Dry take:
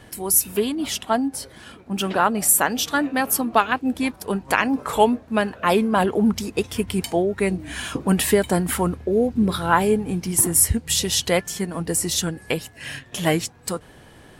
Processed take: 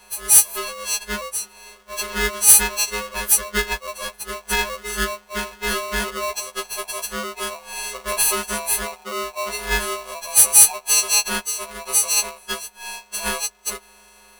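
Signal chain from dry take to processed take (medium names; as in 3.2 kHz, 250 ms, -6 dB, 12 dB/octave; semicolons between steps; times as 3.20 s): partials quantised in pitch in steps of 6 st; polarity switched at an audio rate 830 Hz; trim -8.5 dB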